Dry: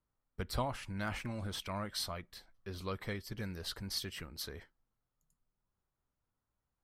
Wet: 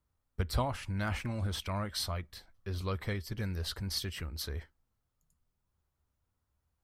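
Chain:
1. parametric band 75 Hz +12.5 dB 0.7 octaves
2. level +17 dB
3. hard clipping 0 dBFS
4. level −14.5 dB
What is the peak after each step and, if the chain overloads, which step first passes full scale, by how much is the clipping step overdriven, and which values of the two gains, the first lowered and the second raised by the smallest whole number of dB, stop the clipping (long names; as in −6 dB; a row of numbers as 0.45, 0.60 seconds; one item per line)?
−21.5, −4.5, −4.5, −19.0 dBFS
no step passes full scale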